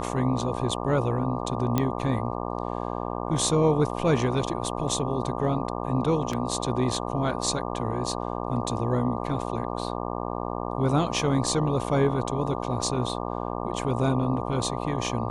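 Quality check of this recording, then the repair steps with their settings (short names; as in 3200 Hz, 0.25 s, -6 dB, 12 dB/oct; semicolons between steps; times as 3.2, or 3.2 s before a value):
buzz 60 Hz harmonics 20 -31 dBFS
1.78 pop -10 dBFS
6.33 gap 3.6 ms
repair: de-click; de-hum 60 Hz, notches 20; interpolate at 6.33, 3.6 ms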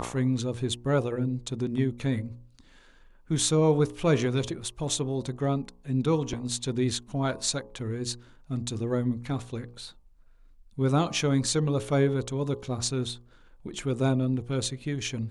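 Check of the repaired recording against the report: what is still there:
none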